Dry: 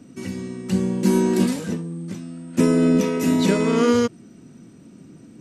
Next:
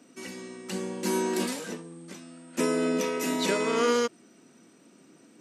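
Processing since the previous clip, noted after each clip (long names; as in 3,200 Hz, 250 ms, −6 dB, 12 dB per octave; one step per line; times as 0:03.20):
Bessel high-pass filter 520 Hz, order 2
level −1.5 dB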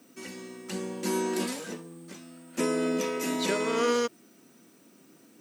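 background noise blue −65 dBFS
level −1.5 dB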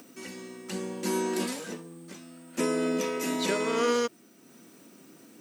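upward compression, threshold −46 dBFS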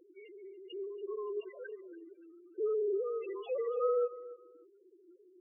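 three sine waves on the formant tracks
spectral peaks only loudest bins 4
repeating echo 285 ms, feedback 23%, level −17 dB
level −5.5 dB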